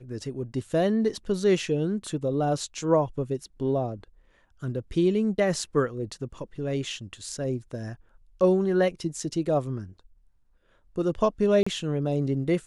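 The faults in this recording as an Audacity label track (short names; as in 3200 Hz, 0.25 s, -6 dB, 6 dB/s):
11.630000	11.660000	gap 35 ms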